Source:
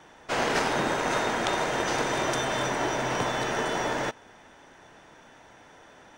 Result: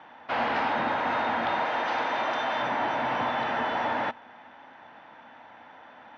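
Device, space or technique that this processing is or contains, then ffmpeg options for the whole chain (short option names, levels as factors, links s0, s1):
overdrive pedal into a guitar cabinet: -filter_complex "[0:a]asplit=2[s0][s1];[s1]highpass=f=720:p=1,volume=8.91,asoftclip=type=tanh:threshold=0.355[s2];[s0][s2]amix=inputs=2:normalize=0,lowpass=f=1800:p=1,volume=0.501,highpass=81,equalizer=f=92:t=q:w=4:g=8,equalizer=f=240:t=q:w=4:g=8,equalizer=f=400:t=q:w=4:g=-10,equalizer=f=850:t=q:w=4:g=5,lowpass=f=4100:w=0.5412,lowpass=f=4100:w=1.3066,asettb=1/sr,asplit=3[s3][s4][s5];[s3]atrim=end=1.654[s6];[s4]atrim=start=1.65:end=2.62,asetpts=PTS-STARTPTS,afade=t=in:d=0.004:c=qsin,afade=t=out:st=0.966:d=0.004:c=qsin,bass=f=250:g=-9,treble=f=4000:g=3[s7];[s5]atrim=start=2.616[s8];[s6][s7]acrossfade=d=0.004:c1=hsin:c2=qsin[s9];[s9][s8]acrossfade=d=0.004:c1=qsin:c2=hsin,volume=0.398"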